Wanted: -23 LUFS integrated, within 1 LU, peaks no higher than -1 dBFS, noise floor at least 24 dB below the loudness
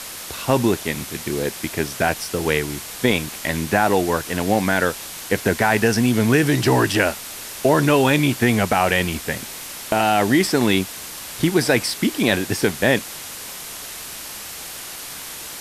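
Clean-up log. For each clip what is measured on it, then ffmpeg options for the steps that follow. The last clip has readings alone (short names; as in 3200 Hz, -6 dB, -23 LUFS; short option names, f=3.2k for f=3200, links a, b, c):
noise floor -34 dBFS; noise floor target -44 dBFS; loudness -20.0 LUFS; peak -3.0 dBFS; loudness target -23.0 LUFS
-> -af "afftdn=nr=10:nf=-34"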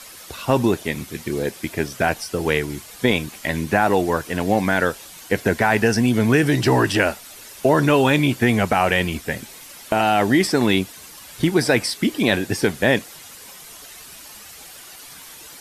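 noise floor -41 dBFS; noise floor target -44 dBFS
-> -af "afftdn=nr=6:nf=-41"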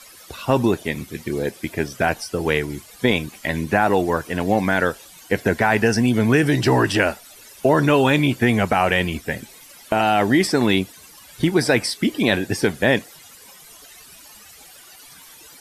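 noise floor -45 dBFS; loudness -20.0 LUFS; peak -3.5 dBFS; loudness target -23.0 LUFS
-> -af "volume=-3dB"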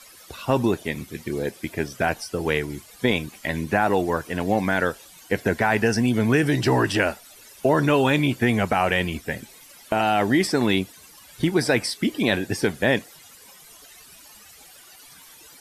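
loudness -23.0 LUFS; peak -6.5 dBFS; noise floor -48 dBFS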